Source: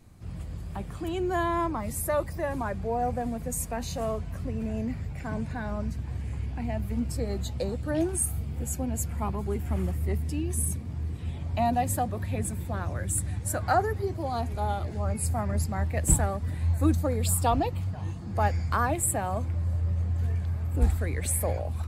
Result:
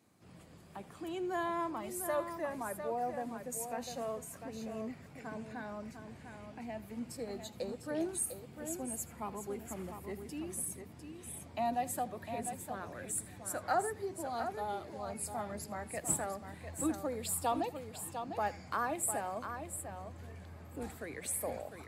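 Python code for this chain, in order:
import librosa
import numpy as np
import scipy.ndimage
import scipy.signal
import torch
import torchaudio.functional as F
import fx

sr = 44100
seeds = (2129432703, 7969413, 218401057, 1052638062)

p1 = scipy.signal.sosfilt(scipy.signal.butter(2, 240.0, 'highpass', fs=sr, output='sos'), x)
p2 = p1 + fx.echo_multitap(p1, sr, ms=(81, 701), db=(-20.0, -8.0), dry=0)
y = p2 * librosa.db_to_amplitude(-7.5)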